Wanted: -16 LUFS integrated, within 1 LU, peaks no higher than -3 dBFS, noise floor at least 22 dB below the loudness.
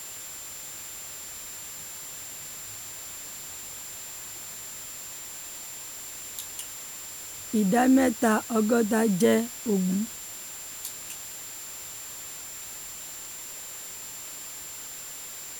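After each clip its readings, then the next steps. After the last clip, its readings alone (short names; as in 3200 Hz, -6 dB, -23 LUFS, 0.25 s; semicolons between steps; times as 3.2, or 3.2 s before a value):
steady tone 7300 Hz; tone level -40 dBFS; noise floor -40 dBFS; noise floor target -53 dBFS; loudness -30.5 LUFS; peak -10.0 dBFS; loudness target -16.0 LUFS
-> notch 7300 Hz, Q 30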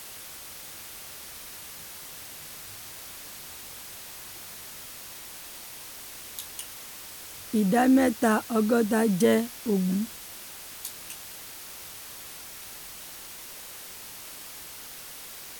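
steady tone none; noise floor -43 dBFS; noise floor target -53 dBFS
-> denoiser 10 dB, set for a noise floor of -43 dBFS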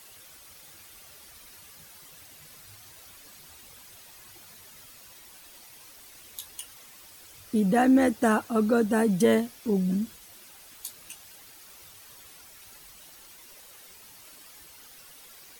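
noise floor -51 dBFS; loudness -25.0 LUFS; peak -10.5 dBFS; loudness target -16.0 LUFS
-> gain +9 dB; limiter -3 dBFS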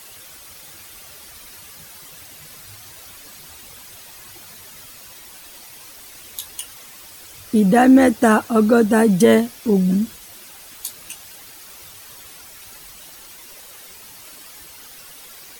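loudness -16.5 LUFS; peak -3.0 dBFS; noise floor -42 dBFS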